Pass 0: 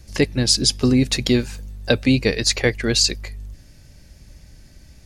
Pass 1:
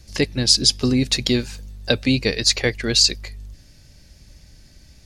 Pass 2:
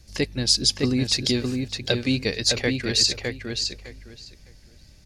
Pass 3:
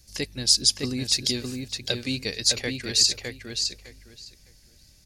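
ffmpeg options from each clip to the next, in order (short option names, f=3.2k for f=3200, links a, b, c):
-af "equalizer=f=4.4k:w=0.97:g=5.5,volume=-2.5dB"
-filter_complex "[0:a]asplit=2[a][b];[b]adelay=609,lowpass=f=4.5k:p=1,volume=-4dB,asplit=2[c][d];[d]adelay=609,lowpass=f=4.5k:p=1,volume=0.19,asplit=2[e][f];[f]adelay=609,lowpass=f=4.5k:p=1,volume=0.19[g];[a][c][e][g]amix=inputs=4:normalize=0,volume=-4.5dB"
-af "crystalizer=i=2.5:c=0,volume=-7dB"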